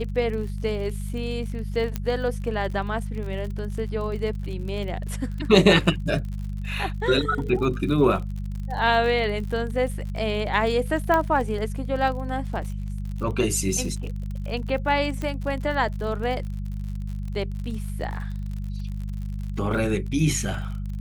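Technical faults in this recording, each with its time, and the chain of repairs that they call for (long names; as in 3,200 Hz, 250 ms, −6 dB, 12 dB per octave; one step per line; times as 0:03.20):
surface crackle 53 per second −33 dBFS
mains hum 50 Hz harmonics 4 −30 dBFS
0:01.96: click −13 dBFS
0:11.14: click −11 dBFS
0:15.22: click −18 dBFS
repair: click removal
hum removal 50 Hz, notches 4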